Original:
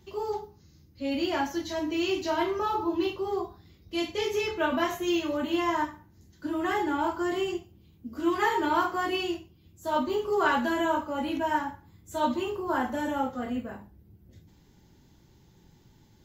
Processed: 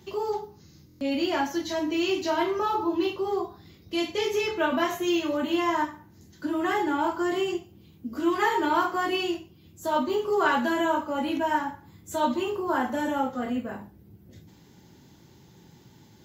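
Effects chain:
high-pass filter 110 Hz 12 dB per octave
in parallel at +1.5 dB: downward compressor, threshold −39 dBFS, peak gain reduction 17.5 dB
on the sum: buffer that repeats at 0:00.87, samples 1,024, times 5

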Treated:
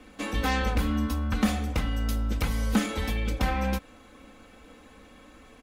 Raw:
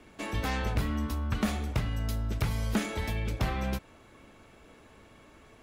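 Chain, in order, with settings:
comb filter 3.9 ms, depth 73%
level +2 dB

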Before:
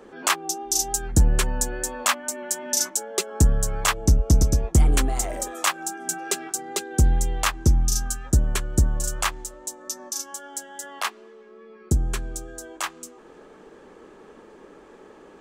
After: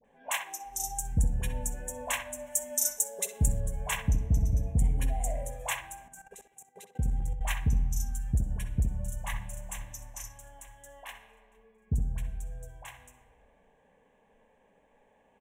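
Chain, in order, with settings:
phaser with its sweep stopped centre 1,300 Hz, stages 6
0:08.87–0:09.39: delay throw 450 ms, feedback 45%, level −3.5 dB
downward compressor 1.5 to 1, threshold −24 dBFS, peak gain reduction 4.5 dB
convolution reverb RT60 2.0 s, pre-delay 45 ms, DRR 10 dB
noise reduction from a noise print of the clip's start 9 dB
0:02.42–0:03.56: high-shelf EQ 4,300 Hz +8.5 dB
all-pass dispersion highs, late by 46 ms, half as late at 930 Hz
0:06.08–0:07.41: output level in coarse steps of 22 dB
feedback echo with a low-pass in the loop 64 ms, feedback 33%, low-pass 1,800 Hz, level −5.5 dB
level −4.5 dB

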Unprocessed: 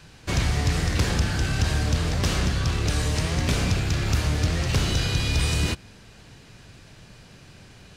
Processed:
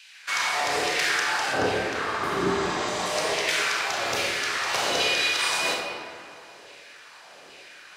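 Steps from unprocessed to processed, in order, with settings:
auto-filter high-pass saw down 1.2 Hz 430–2,700 Hz
0:01.53–0:03.06: tilt shelving filter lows +10 dB, about 1,300 Hz
0:02.10–0:03.05: healed spectral selection 410–8,400 Hz both
convolution reverb RT60 2.1 s, pre-delay 26 ms, DRR −2 dB

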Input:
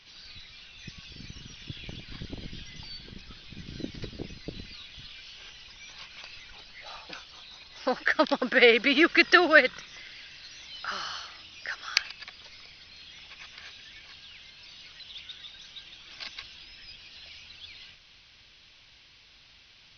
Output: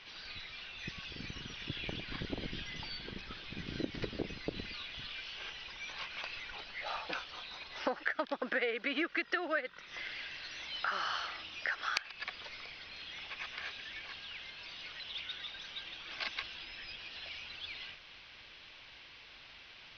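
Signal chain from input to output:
bass and treble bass −9 dB, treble −14 dB
downward compressor 12 to 1, threshold −37 dBFS, peak gain reduction 24 dB
level +6 dB

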